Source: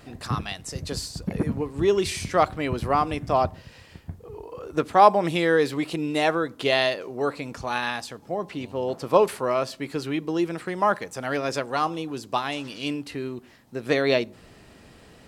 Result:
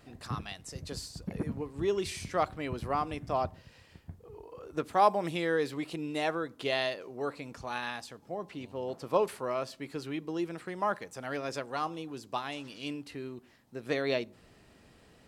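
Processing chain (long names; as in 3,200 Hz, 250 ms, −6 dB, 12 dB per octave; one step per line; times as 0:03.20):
0:04.84–0:05.30: high-shelf EQ 8,500 Hz +8 dB
level −9 dB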